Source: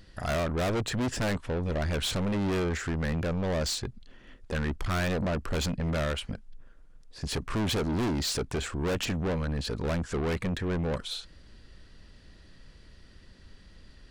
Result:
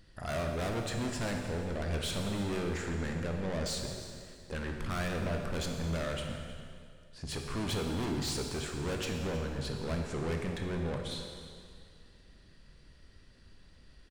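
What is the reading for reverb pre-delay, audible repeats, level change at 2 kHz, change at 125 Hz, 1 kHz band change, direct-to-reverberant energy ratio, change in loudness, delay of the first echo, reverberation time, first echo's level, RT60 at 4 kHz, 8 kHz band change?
8 ms, 1, −5.0 dB, −5.0 dB, −4.5 dB, 2.0 dB, −5.0 dB, 317 ms, 2.2 s, −17.5 dB, 2.0 s, −4.0 dB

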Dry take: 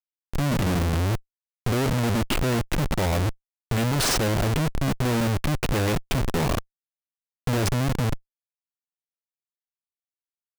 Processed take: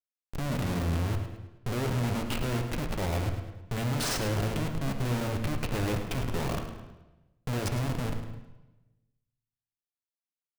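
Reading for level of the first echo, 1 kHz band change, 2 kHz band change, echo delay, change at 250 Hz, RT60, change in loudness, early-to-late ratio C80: −11.0 dB, −7.0 dB, −7.0 dB, 106 ms, −6.5 dB, 1.0 s, −6.5 dB, 7.0 dB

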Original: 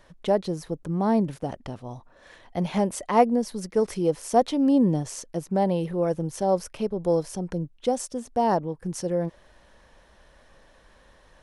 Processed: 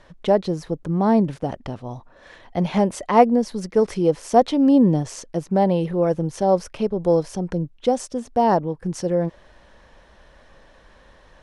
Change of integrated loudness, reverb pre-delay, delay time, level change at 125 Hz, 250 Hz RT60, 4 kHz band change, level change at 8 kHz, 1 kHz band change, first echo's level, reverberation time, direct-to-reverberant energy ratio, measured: +5.0 dB, no reverb audible, no echo audible, +5.0 dB, no reverb audible, +3.0 dB, −0.5 dB, +5.0 dB, no echo audible, no reverb audible, no reverb audible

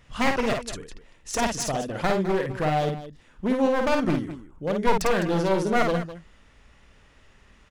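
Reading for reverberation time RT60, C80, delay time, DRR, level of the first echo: no reverb audible, no reverb audible, 52 ms, no reverb audible, −4.5 dB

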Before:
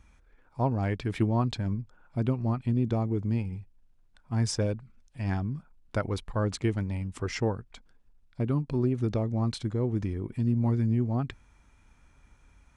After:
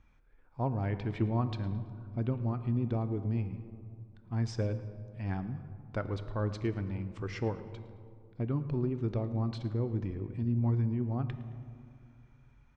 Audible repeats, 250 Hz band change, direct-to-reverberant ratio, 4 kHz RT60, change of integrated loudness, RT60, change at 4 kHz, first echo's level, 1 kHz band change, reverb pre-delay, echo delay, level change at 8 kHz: 2, −5.0 dB, 10.0 dB, 1.0 s, −4.5 dB, 2.2 s, −10.0 dB, −18.5 dB, −5.0 dB, 3 ms, 110 ms, below −15 dB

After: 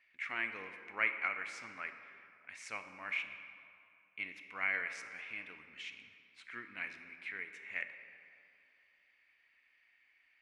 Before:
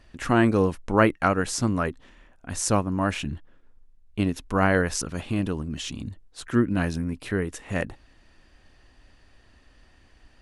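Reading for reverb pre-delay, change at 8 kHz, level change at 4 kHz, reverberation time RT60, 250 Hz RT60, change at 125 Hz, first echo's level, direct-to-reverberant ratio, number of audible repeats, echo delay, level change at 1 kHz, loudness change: 4 ms, −25.5 dB, −14.5 dB, 2.7 s, 2.5 s, below −35 dB, no echo audible, 7.0 dB, no echo audible, no echo audible, −18.5 dB, −14.5 dB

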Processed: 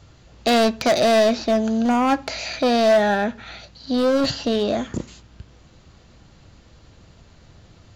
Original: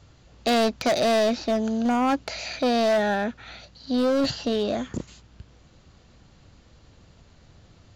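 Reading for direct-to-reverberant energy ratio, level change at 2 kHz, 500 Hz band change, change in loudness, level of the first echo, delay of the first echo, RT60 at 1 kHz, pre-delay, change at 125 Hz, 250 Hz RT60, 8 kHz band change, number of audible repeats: 11.0 dB, +4.5 dB, +4.5 dB, +4.5 dB, no echo audible, no echo audible, 0.35 s, 3 ms, +4.0 dB, 0.65 s, +4.0 dB, no echo audible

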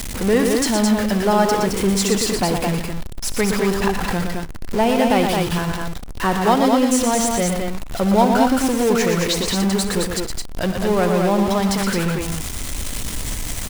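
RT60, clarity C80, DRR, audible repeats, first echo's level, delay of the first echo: no reverb audible, no reverb audible, no reverb audible, 4, −15.0 dB, 62 ms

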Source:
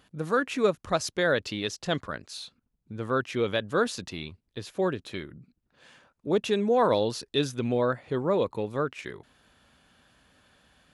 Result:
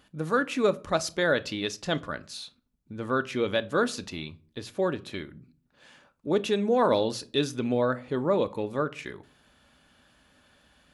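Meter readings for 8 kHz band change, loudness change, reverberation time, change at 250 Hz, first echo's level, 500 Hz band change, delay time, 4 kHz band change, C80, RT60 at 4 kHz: +0.5 dB, 0.0 dB, 0.40 s, +1.0 dB, no echo audible, 0.0 dB, no echo audible, 0.0 dB, 26.5 dB, 0.25 s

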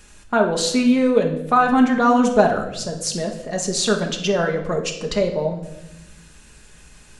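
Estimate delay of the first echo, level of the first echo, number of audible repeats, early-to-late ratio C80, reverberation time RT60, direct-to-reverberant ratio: no echo audible, no echo audible, no echo audible, 11.0 dB, 0.90 s, 1.5 dB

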